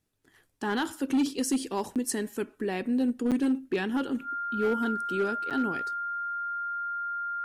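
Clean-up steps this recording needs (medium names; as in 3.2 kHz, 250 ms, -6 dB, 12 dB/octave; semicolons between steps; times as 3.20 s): clip repair -20.5 dBFS; band-stop 1.4 kHz, Q 30; interpolate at 1.95/3.31/5.50 s, 7.7 ms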